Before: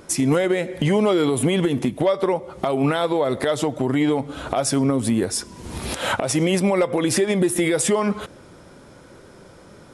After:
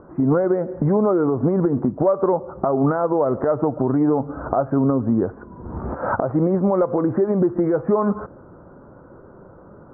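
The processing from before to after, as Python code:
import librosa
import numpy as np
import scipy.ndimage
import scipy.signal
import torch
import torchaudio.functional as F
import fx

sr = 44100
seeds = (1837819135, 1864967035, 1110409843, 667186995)

p1 = scipy.signal.sosfilt(scipy.signal.butter(8, 1400.0, 'lowpass', fs=sr, output='sos'), x)
p2 = fx.rider(p1, sr, range_db=3, speed_s=0.5)
p3 = p1 + (p2 * librosa.db_to_amplitude(2.0))
y = p3 * librosa.db_to_amplitude(-5.5)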